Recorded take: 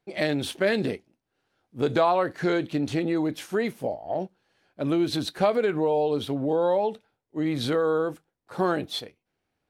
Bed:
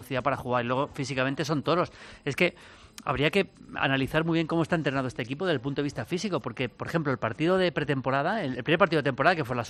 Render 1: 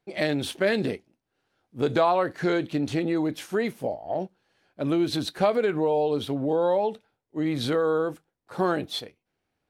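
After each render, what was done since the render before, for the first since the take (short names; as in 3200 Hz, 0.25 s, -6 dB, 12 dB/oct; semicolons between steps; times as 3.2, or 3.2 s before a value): nothing audible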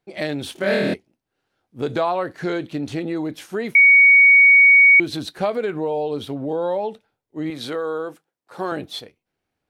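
0.53–0.94 flutter echo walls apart 4.3 m, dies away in 1.2 s; 3.75–5 bleep 2240 Hz -7.5 dBFS; 7.5–8.72 HPF 360 Hz 6 dB/oct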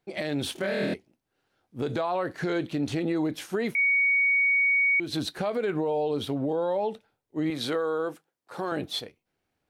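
compressor, threshold -21 dBFS, peak gain reduction 10.5 dB; limiter -19.5 dBFS, peak gain reduction 8.5 dB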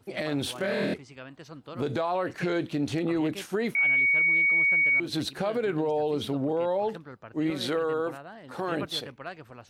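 add bed -17 dB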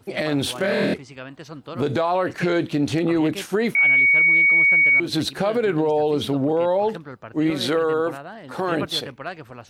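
gain +7 dB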